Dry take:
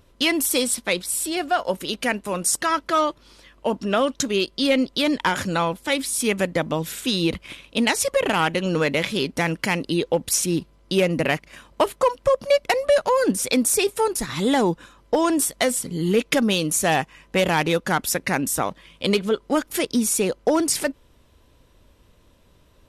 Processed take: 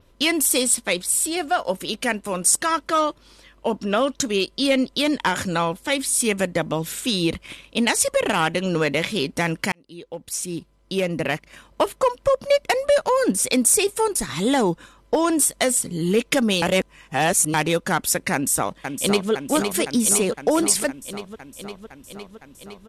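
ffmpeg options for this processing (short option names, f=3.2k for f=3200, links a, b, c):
-filter_complex "[0:a]asplit=2[a][b];[b]afade=t=in:st=18.33:d=0.01,afade=t=out:st=19.31:d=0.01,aecho=0:1:510|1020|1530|2040|2550|3060|3570|4080|4590|5100|5610|6120:0.501187|0.37589|0.281918|0.211438|0.158579|0.118934|0.0892006|0.0669004|0.0501753|0.0376315|0.0282236|0.0211677[c];[a][c]amix=inputs=2:normalize=0,asplit=4[d][e][f][g];[d]atrim=end=9.72,asetpts=PTS-STARTPTS,afade=t=out:st=9.716:d=0.004:c=hsin[h];[e]atrim=start=9.72:end=16.622,asetpts=PTS-STARTPTS,afade=t=in:d=2.8:c=qsin[i];[f]atrim=start=16.618:end=17.542,asetpts=PTS-STARTPTS,areverse[j];[g]atrim=start=17.538[k];[h][i]concat=n=2:v=0:a=1[l];[l][j]acrossfade=d=0.004:c1=hsin:c2=hsin[m];[m][k]acrossfade=d=0.004:c1=hsin:c2=hsin,adynamicequalizer=threshold=0.01:dfrequency=8500:dqfactor=1.8:tfrequency=8500:tqfactor=1.8:attack=5:release=100:ratio=0.375:range=3:mode=boostabove:tftype=bell"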